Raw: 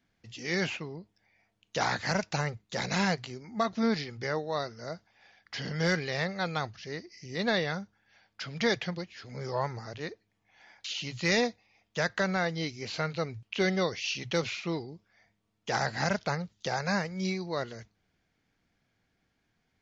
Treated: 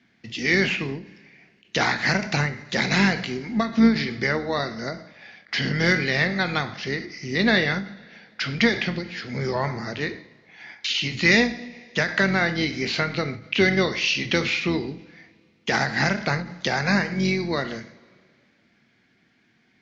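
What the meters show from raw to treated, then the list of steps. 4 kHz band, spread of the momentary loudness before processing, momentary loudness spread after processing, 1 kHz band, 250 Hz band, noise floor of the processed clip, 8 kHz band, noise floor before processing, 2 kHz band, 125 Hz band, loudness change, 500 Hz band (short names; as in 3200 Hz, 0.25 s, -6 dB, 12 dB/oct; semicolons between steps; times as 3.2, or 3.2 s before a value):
+9.0 dB, 13 LU, 12 LU, +5.0 dB, +10.0 dB, -63 dBFS, n/a, -77 dBFS, +11.0 dB, +7.5 dB, +9.0 dB, +5.5 dB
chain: octaver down 2 oct, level -2 dB; Chebyshev band-pass 130–5700 Hz, order 2; two-slope reverb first 0.52 s, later 2.2 s, from -21 dB, DRR 8 dB; in parallel at +2.5 dB: compressor, threshold -35 dBFS, peak gain reduction 13 dB; on the sum: graphic EQ 250/2000/4000 Hz +9/+9/+3 dB; ending taper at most 130 dB/s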